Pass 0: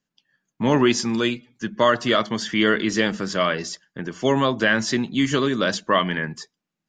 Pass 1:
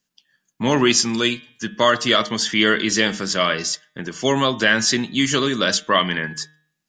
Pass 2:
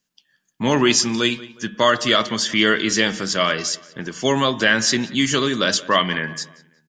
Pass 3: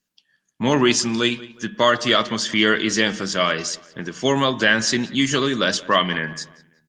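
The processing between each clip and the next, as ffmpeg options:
-af "highshelf=f=2600:g=11,bandreject=f=153:t=h:w=4,bandreject=f=306:t=h:w=4,bandreject=f=459:t=h:w=4,bandreject=f=612:t=h:w=4,bandreject=f=765:t=h:w=4,bandreject=f=918:t=h:w=4,bandreject=f=1071:t=h:w=4,bandreject=f=1224:t=h:w=4,bandreject=f=1377:t=h:w=4,bandreject=f=1530:t=h:w=4,bandreject=f=1683:t=h:w=4,bandreject=f=1836:t=h:w=4,bandreject=f=1989:t=h:w=4,bandreject=f=2142:t=h:w=4,bandreject=f=2295:t=h:w=4,bandreject=f=2448:t=h:w=4,bandreject=f=2601:t=h:w=4,bandreject=f=2754:t=h:w=4,bandreject=f=2907:t=h:w=4,bandreject=f=3060:t=h:w=4,bandreject=f=3213:t=h:w=4,bandreject=f=3366:t=h:w=4,bandreject=f=3519:t=h:w=4,bandreject=f=3672:t=h:w=4,bandreject=f=3825:t=h:w=4"
-filter_complex "[0:a]asplit=2[s0][s1];[s1]adelay=181,lowpass=f=3200:p=1,volume=0.112,asplit=2[s2][s3];[s3]adelay=181,lowpass=f=3200:p=1,volume=0.43,asplit=2[s4][s5];[s5]adelay=181,lowpass=f=3200:p=1,volume=0.43[s6];[s0][s2][s4][s6]amix=inputs=4:normalize=0"
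-ar 48000 -c:a libopus -b:a 32k

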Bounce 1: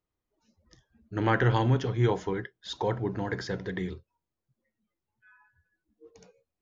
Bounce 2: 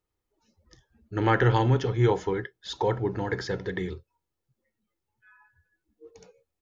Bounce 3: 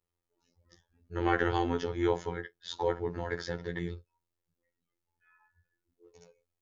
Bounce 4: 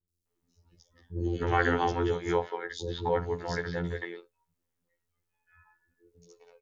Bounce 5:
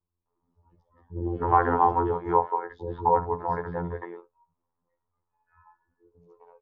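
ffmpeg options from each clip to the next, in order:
-af "aecho=1:1:2.3:0.31,volume=1.26"
-af "afftfilt=real='hypot(re,im)*cos(PI*b)':imag='0':win_size=2048:overlap=0.75,volume=0.841"
-filter_complex "[0:a]acrossover=split=360|3800[s0][s1][s2];[s2]adelay=80[s3];[s1]adelay=260[s4];[s0][s4][s3]amix=inputs=3:normalize=0,volume=1.58"
-af "lowpass=f=1000:t=q:w=4.9"

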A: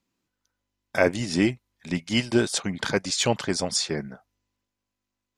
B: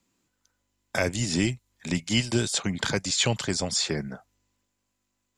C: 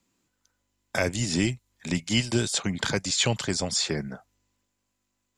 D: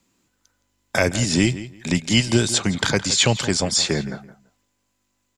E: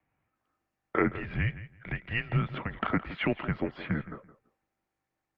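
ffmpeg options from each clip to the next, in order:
-filter_complex "[0:a]acrossover=split=4200[s0][s1];[s1]acompressor=threshold=0.0126:ratio=4:attack=1:release=60[s2];[s0][s2]amix=inputs=2:normalize=0,equalizer=f=7300:t=o:w=0.25:g=9,acrossover=split=140|3000[s3][s4][s5];[s4]acompressor=threshold=0.0178:ratio=2.5[s6];[s3][s6][s5]amix=inputs=3:normalize=0,volume=1.78"
-af anull
-filter_complex "[0:a]asplit=2[s0][s1];[s1]adelay=167,lowpass=f=4600:p=1,volume=0.188,asplit=2[s2][s3];[s3]adelay=167,lowpass=f=4600:p=1,volume=0.2[s4];[s0][s2][s4]amix=inputs=3:normalize=0,volume=2.11"
-af "lowshelf=f=240:t=q:w=1.5:g=-11,highpass=f=300:t=q:w=0.5412,highpass=f=300:t=q:w=1.307,lowpass=f=2600:t=q:w=0.5176,lowpass=f=2600:t=q:w=0.7071,lowpass=f=2600:t=q:w=1.932,afreqshift=-220,volume=0.473" -ar 48000 -c:a libopus -b:a 48k

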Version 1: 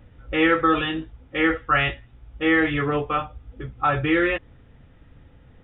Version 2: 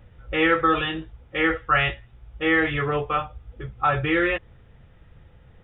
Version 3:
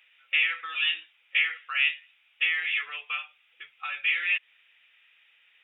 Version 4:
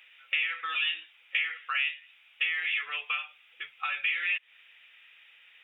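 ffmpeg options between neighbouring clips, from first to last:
-af "equalizer=f=270:t=o:w=0.27:g=-13"
-af "acompressor=threshold=0.0501:ratio=4,highpass=f=2500:t=q:w=4.1"
-af "acompressor=threshold=0.02:ratio=3,volume=1.78"

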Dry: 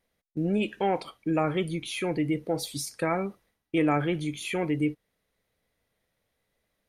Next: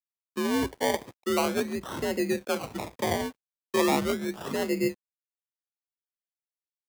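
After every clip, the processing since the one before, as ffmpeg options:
-af "acrusher=samples=27:mix=1:aa=0.000001:lfo=1:lforange=16.2:lforate=0.37,afreqshift=55,aeval=exprs='sgn(val(0))*max(abs(val(0))-0.002,0)':c=same"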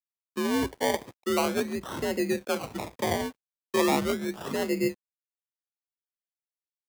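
-af anull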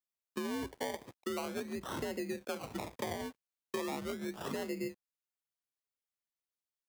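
-af "acompressor=threshold=0.0224:ratio=6,volume=0.794"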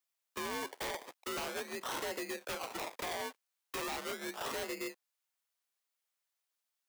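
-af "highpass=590,aeval=exprs='0.0106*(abs(mod(val(0)/0.0106+3,4)-2)-1)':c=same,volume=2.24"

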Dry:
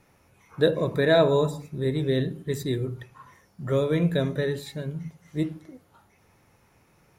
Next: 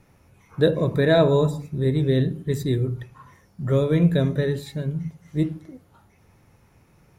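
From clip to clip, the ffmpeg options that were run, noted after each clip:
-af "lowshelf=f=250:g=8.5"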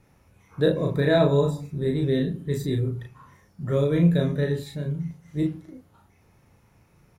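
-filter_complex "[0:a]asplit=2[s0][s1];[s1]adelay=35,volume=0.708[s2];[s0][s2]amix=inputs=2:normalize=0,volume=0.631"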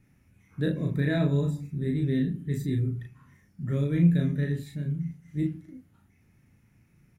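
-af "equalizer=f=125:t=o:w=1:g=3,equalizer=f=250:t=o:w=1:g=6,equalizer=f=500:t=o:w=1:g=-8,equalizer=f=1000:t=o:w=1:g=-9,equalizer=f=2000:t=o:w=1:g=5,equalizer=f=4000:t=o:w=1:g=-5,volume=0.562"

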